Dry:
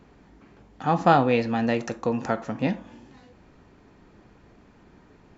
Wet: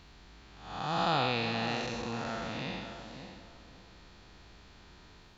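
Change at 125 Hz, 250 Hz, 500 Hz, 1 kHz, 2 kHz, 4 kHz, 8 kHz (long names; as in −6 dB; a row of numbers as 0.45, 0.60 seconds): −9.0 dB, −12.0 dB, −11.5 dB, −8.5 dB, −4.0 dB, +4.5 dB, can't be measured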